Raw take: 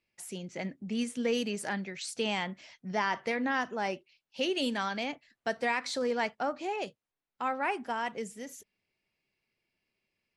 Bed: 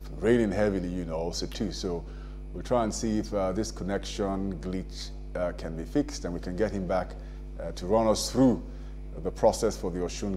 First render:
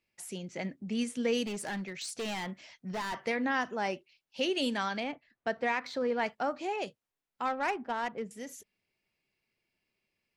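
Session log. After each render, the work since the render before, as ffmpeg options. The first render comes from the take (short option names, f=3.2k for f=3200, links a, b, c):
-filter_complex "[0:a]asettb=1/sr,asplit=3[a][b][c];[a]atrim=end=1.434[d];[b]atrim=start=1.43:end=3.25,asetpts=PTS-STARTPTS,afade=t=in:d=0.004:c=qsin,afade=t=out:st=1.816:d=0.004:c=qsin,asoftclip=type=hard:threshold=-32.5dB[e];[c]atrim=start=3.246[f];[d][e]acrossfade=d=0.004:c1=hsin:c2=qsin[g];[g][f]acrossfade=d=0.004:c1=qsin:c2=hsin,asettb=1/sr,asplit=3[h][i][j];[h]atrim=end=5.004[k];[i]atrim=start=5:end=6.26,asetpts=PTS-STARTPTS,afade=t=in:d=0.004:c=qsin,afade=t=out:st=1.256:d=0.004:c=qsin,adynamicsmooth=sensitivity=1.5:basefreq=3k[l];[j]atrim=start=6.256[m];[k][l]acrossfade=d=0.004:c1=hsin:c2=qsin[n];[n][m]acrossfade=d=0.004:c1=qsin:c2=hsin,asettb=1/sr,asplit=3[o][p][q];[o]atrim=end=7.454[r];[p]atrim=start=7.45:end=8.31,asetpts=PTS-STARTPTS,afade=t=in:d=0.004:c=qsin,afade=t=out:st=0.856:d=0.004:c=qsin,adynamicsmooth=sensitivity=4.5:basefreq=1.5k[s];[q]atrim=start=8.306[t];[r][s]acrossfade=d=0.004:c1=hsin:c2=qsin[u];[u][t]acrossfade=d=0.004:c1=qsin:c2=hsin"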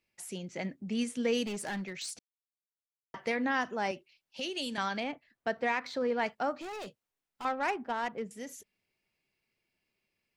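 -filter_complex "[0:a]asettb=1/sr,asplit=3[a][b][c];[a]atrim=end=3.914[d];[b]atrim=start=3.91:end=4.78,asetpts=PTS-STARTPTS,afade=t=in:d=0.004:c=qsin,afade=t=out:st=0.866:d=0.004:c=qsin,acrossover=split=130|3000[e][f][g];[f]acompressor=threshold=-36dB:ratio=6:attack=3.2:release=140:knee=2.83:detection=peak[h];[e][h][g]amix=inputs=3:normalize=0[i];[c]atrim=start=4.776[j];[d][i]acrossfade=d=0.004:c1=hsin:c2=qsin[k];[k][j]acrossfade=d=0.004:c1=qsin:c2=hsin,asettb=1/sr,asplit=3[l][m][n];[l]atrim=end=6.574[o];[m]atrim=start=6.57:end=7.45,asetpts=PTS-STARTPTS,afade=t=in:d=0.004:c=qsin,afade=t=out:st=0.876:d=0.004:c=qsin,asoftclip=type=hard:threshold=-39dB[p];[n]atrim=start=7.446[q];[o][p]acrossfade=d=0.004:c1=hsin:c2=qsin[r];[r][q]acrossfade=d=0.004:c1=qsin:c2=hsin,asplit=3[s][t][u];[s]atrim=end=2.19,asetpts=PTS-STARTPTS,afade=t=out:st=2.186:d=0.004:c=hsin[v];[t]atrim=start=2.19:end=3.14,asetpts=PTS-STARTPTS,volume=0[w];[u]atrim=start=3.14,asetpts=PTS-STARTPTS,afade=t=in:d=0.004:c=hsin[x];[v][w][x]concat=n=3:v=0:a=1"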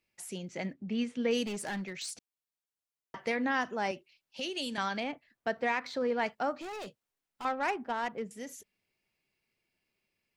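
-filter_complex "[0:a]asettb=1/sr,asplit=3[a][b][c];[a]atrim=end=0.734[d];[b]atrim=start=0.73:end=1.31,asetpts=PTS-STARTPTS,afade=t=in:d=0.004:c=qsin,afade=t=out:st=0.576:d=0.004:c=qsin,lowpass=3.7k[e];[c]atrim=start=1.306[f];[d][e]acrossfade=d=0.004:c1=hsin:c2=qsin[g];[g][f]acrossfade=d=0.004:c1=qsin:c2=hsin"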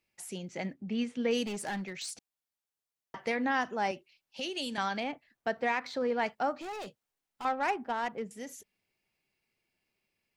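-af "equalizer=f=800:w=6.5:g=3.5"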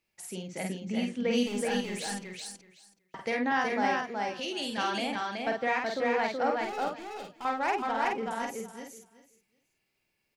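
-filter_complex "[0:a]asplit=2[a][b];[b]adelay=49,volume=-3.5dB[c];[a][c]amix=inputs=2:normalize=0,aecho=1:1:375|750|1125:0.708|0.113|0.0181"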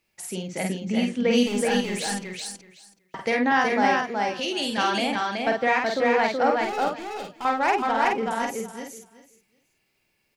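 -af "volume=7dB"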